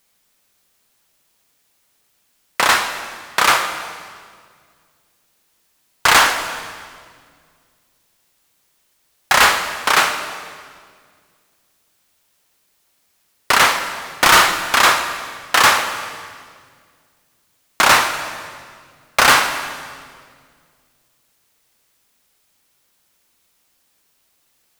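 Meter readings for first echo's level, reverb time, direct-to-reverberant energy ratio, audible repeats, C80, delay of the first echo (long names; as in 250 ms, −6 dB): no echo audible, 1.9 s, 7.0 dB, no echo audible, 9.5 dB, no echo audible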